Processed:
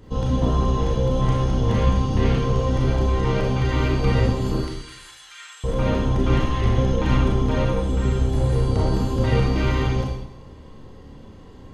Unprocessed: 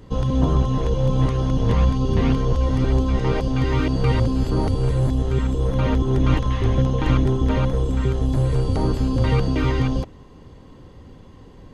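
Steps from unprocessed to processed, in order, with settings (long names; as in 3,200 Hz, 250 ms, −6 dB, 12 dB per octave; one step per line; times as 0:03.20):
0:04.56–0:05.64: high-pass filter 1,500 Hz 24 dB per octave
four-comb reverb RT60 0.82 s, combs from 28 ms, DRR −2.5 dB
level −3 dB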